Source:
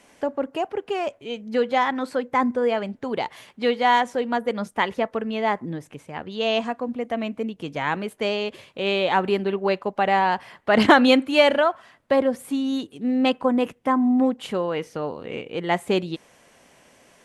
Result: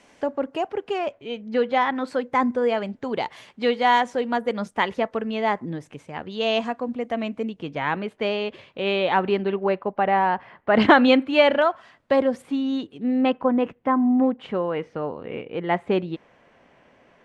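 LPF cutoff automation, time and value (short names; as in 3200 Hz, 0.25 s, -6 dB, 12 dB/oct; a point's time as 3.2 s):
7200 Hz
from 0.98 s 4100 Hz
from 2.07 s 7700 Hz
from 7.59 s 3700 Hz
from 9.63 s 2000 Hz
from 10.76 s 3500 Hz
from 11.62 s 6600 Hz
from 12.42 s 3700 Hz
from 13.21 s 2300 Hz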